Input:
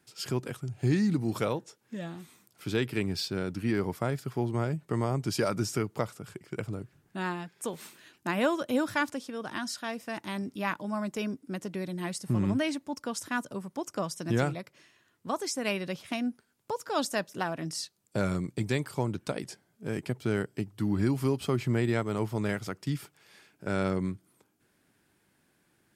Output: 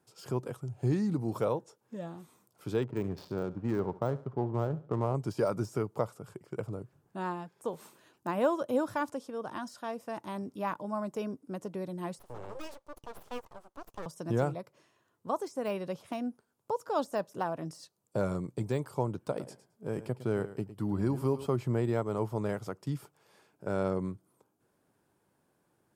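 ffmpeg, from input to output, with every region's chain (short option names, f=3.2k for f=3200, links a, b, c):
-filter_complex "[0:a]asettb=1/sr,asplit=3[a][b][c];[a]atrim=end=2.834[d];[b]atrim=start=2.83:end=5.15,asetpts=PTS-STARTPTS,afade=t=in:d=0.004:c=qsin,afade=t=out:st=2.316:d=0.004:c=qsin,highshelf=f=8.5k:g=11,adynamicsmooth=sensitivity=5.5:basefreq=630,aecho=1:1:70|140|210:0.126|0.0491|0.0191,atrim=end_sample=102312[e];[c]atrim=start=5.146[f];[d][e]acrossfade=d=0.004:c1=hsin:c2=qsin[g];[g][f]acrossfade=d=0.004:c1=qsin:c2=hsin,asettb=1/sr,asplit=3[h][i][j];[h]atrim=end=12.194[k];[i]atrim=start=12.19:end=14.06,asetpts=PTS-STARTPTS,afade=t=in:d=0.004:c=qsin,afade=t=out:st=1.866:d=0.004:c=qsin,highpass=f=870:p=1,equalizer=f=13k:w=0.75:g=-12.5,aeval=exprs='abs(val(0))':c=same[l];[j]atrim=start=14.056[m];[k][l]acrossfade=d=0.004:c1=hsin:c2=qsin[n];[n][m]acrossfade=d=0.004:c1=qsin:c2=hsin,asettb=1/sr,asplit=3[o][p][q];[o]atrim=end=19.234[r];[p]atrim=start=19.23:end=21.48,asetpts=PTS-STARTPTS,afade=t=in:d=0.004:c=qsin,afade=t=out:st=2.246:d=0.004:c=qsin,equalizer=f=6.2k:w=5.1:g=-3,aecho=1:1:108|216:0.2|0.0319,atrim=end_sample=99225[s];[q]atrim=start=21.476[t];[r][s]acrossfade=d=0.004:c1=hsin:c2=qsin[u];[u][t]acrossfade=d=0.004:c1=qsin:c2=hsin,deesser=0.9,equalizer=f=125:t=o:w=1:g=4,equalizer=f=500:t=o:w=1:g=7,equalizer=f=1k:t=o:w=1:g=7,equalizer=f=2k:t=o:w=1:g=-6,equalizer=f=4k:t=o:w=1:g=-3,volume=-6.5dB"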